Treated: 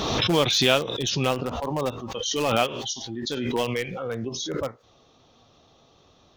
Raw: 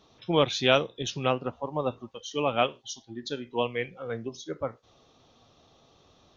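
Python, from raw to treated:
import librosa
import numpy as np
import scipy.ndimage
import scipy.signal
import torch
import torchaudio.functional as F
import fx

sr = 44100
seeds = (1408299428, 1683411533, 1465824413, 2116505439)

p1 = (np.mod(10.0 ** (23.0 / 20.0) * x + 1.0, 2.0) - 1.0) / 10.0 ** (23.0 / 20.0)
p2 = x + (p1 * 10.0 ** (-11.0 / 20.0))
p3 = fx.dynamic_eq(p2, sr, hz=5400.0, q=0.84, threshold_db=-44.0, ratio=4.0, max_db=5)
y = fx.pre_swell(p3, sr, db_per_s=26.0)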